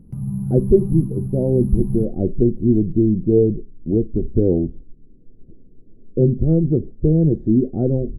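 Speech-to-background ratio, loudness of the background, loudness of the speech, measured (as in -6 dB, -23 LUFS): 7.0 dB, -26.0 LUFS, -19.0 LUFS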